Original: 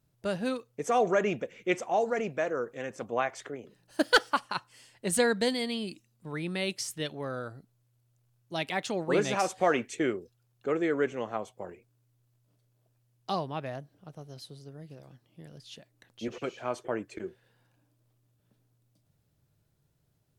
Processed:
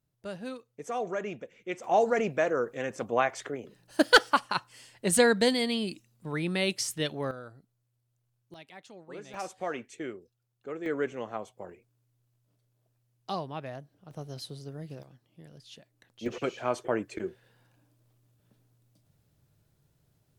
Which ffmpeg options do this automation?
-af "asetnsamples=n=441:p=0,asendcmd='1.84 volume volume 3.5dB;7.31 volume volume -6.5dB;8.54 volume volume -17.5dB;9.34 volume volume -9dB;10.86 volume volume -2.5dB;14.11 volume volume 5dB;15.03 volume volume -2.5dB;16.26 volume volume 3.5dB',volume=0.422"

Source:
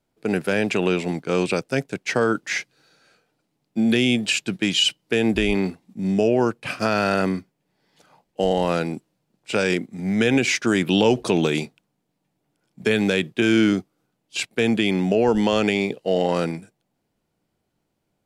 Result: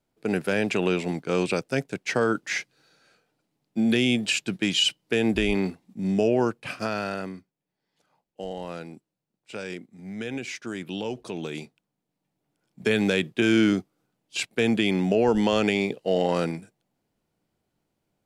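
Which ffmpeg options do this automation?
-af "volume=2.66,afade=t=out:st=6.38:d=0.95:silence=0.281838,afade=t=in:st=11.36:d=1.63:silence=0.266073"

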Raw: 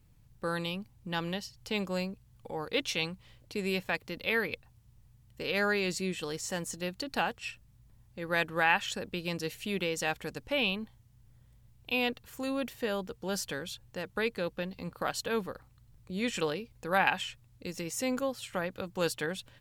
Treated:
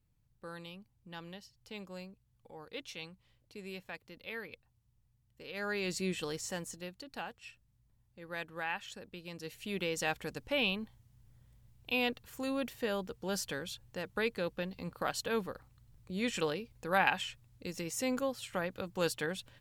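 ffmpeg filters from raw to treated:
-af "volume=2.82,afade=t=in:st=5.53:d=0.6:silence=0.237137,afade=t=out:st=6.13:d=0.85:silence=0.281838,afade=t=in:st=9.33:d=0.64:silence=0.334965"

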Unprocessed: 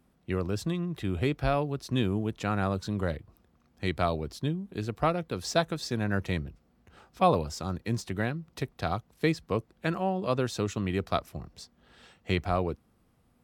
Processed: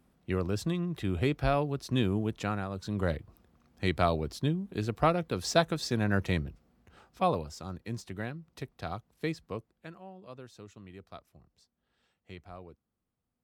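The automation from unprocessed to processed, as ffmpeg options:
-af "volume=3.16,afade=t=out:st=2.4:d=0.28:silence=0.354813,afade=t=in:st=2.68:d=0.42:silence=0.298538,afade=t=out:st=6.39:d=1.11:silence=0.398107,afade=t=out:st=9.41:d=0.53:silence=0.251189"

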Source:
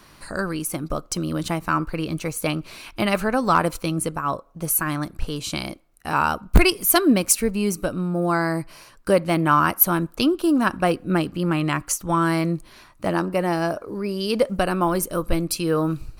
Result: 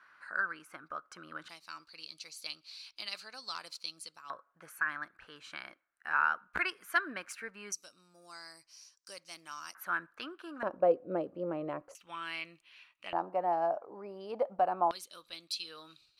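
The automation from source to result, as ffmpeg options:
-af "asetnsamples=n=441:p=0,asendcmd='1.49 bandpass f 4500;4.3 bandpass f 1600;7.72 bandpass f 5800;9.75 bandpass f 1600;10.63 bandpass f 550;11.95 bandpass f 2700;13.13 bandpass f 770;14.91 bandpass f 3800',bandpass=f=1500:t=q:w=4.9:csg=0"

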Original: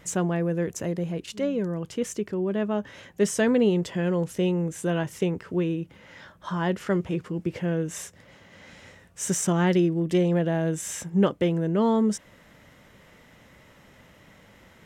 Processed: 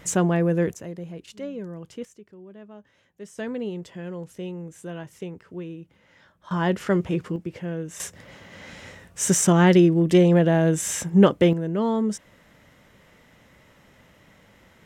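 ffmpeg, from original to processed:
-af "asetnsamples=n=441:p=0,asendcmd='0.74 volume volume -7dB;2.05 volume volume -18dB;3.38 volume volume -9.5dB;6.51 volume volume 3dB;7.36 volume volume -4dB;8 volume volume 6dB;11.53 volume volume -1.5dB',volume=1.68"

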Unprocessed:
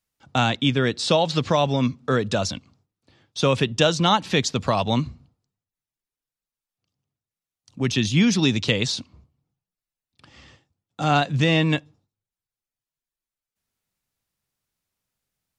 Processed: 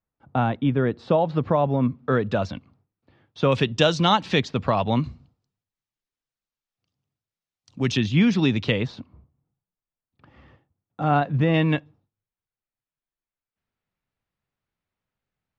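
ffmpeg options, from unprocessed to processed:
-af "asetnsamples=n=441:p=0,asendcmd='1.95 lowpass f 2100;3.52 lowpass f 4800;4.4 lowpass f 2500;5.04 lowpass f 5800;7.97 lowpass f 2700;8.82 lowpass f 1500;11.54 lowpass f 2500',lowpass=1200"

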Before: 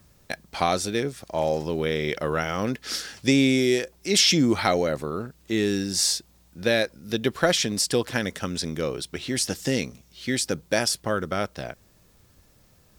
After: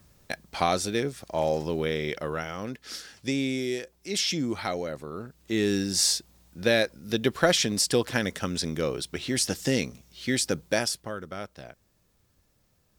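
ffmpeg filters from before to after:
-af "volume=2.11,afade=t=out:st=1.71:d=0.89:silence=0.446684,afade=t=in:st=5.06:d=0.69:silence=0.398107,afade=t=out:st=10.62:d=0.5:silence=0.334965"

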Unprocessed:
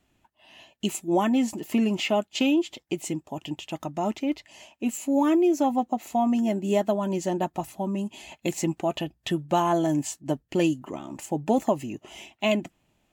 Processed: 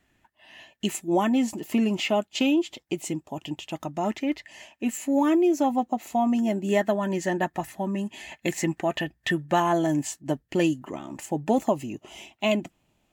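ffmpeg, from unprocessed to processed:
-af "asetnsamples=n=441:p=0,asendcmd='1.01 equalizer g 1.5;4.04 equalizer g 11.5;5.19 equalizer g 3;6.69 equalizer g 14.5;9.6 equalizer g 5.5;11.6 equalizer g -1.5',equalizer=f=1800:t=o:w=0.43:g=10"

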